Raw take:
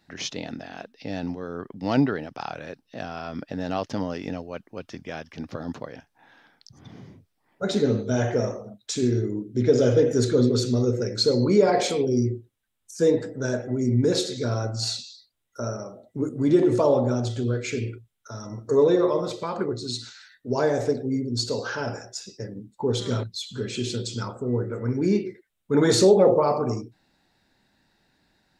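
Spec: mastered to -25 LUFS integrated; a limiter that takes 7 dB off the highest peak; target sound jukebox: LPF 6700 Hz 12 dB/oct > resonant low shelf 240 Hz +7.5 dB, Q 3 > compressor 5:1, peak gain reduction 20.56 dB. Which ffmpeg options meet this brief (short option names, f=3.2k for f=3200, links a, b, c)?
-af "alimiter=limit=-13.5dB:level=0:latency=1,lowpass=6.7k,lowshelf=f=240:t=q:w=3:g=7.5,acompressor=threshold=-32dB:ratio=5,volume=10.5dB"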